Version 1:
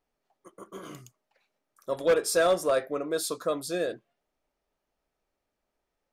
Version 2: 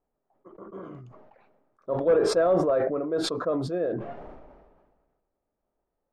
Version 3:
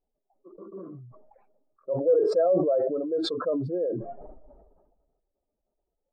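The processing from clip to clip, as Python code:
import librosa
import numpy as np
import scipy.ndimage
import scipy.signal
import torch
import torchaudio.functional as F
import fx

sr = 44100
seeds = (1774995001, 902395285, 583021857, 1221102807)

y1 = scipy.signal.sosfilt(scipy.signal.butter(2, 1000.0, 'lowpass', fs=sr, output='sos'), x)
y1 = fx.sustainer(y1, sr, db_per_s=38.0)
y1 = F.gain(torch.from_numpy(y1), 1.5).numpy()
y2 = fx.spec_expand(y1, sr, power=1.9)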